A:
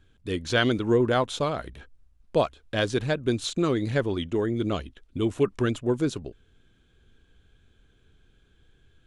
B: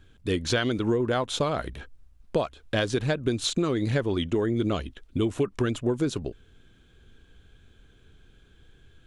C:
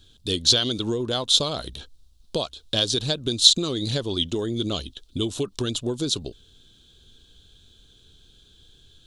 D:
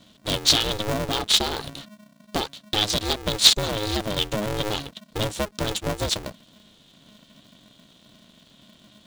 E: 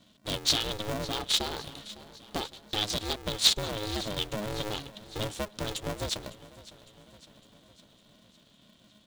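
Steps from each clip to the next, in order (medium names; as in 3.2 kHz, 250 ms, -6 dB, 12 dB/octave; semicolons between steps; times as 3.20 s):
compression 12:1, threshold -26 dBFS, peak gain reduction 10.5 dB; trim +5 dB
resonant high shelf 2.8 kHz +10.5 dB, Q 3; trim -1.5 dB
polarity switched at an audio rate 210 Hz
feedback delay 556 ms, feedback 56%, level -18 dB; trim -7.5 dB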